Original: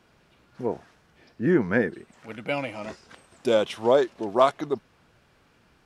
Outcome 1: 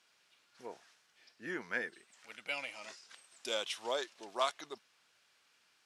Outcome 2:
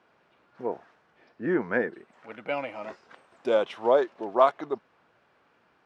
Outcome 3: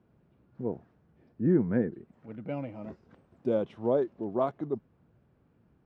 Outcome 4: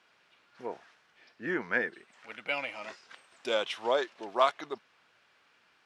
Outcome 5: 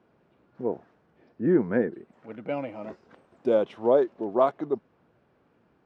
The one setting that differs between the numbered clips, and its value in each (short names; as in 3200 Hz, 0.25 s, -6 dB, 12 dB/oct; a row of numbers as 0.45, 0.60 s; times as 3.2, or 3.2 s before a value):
band-pass, frequency: 6600, 920, 140, 2500, 360 Hz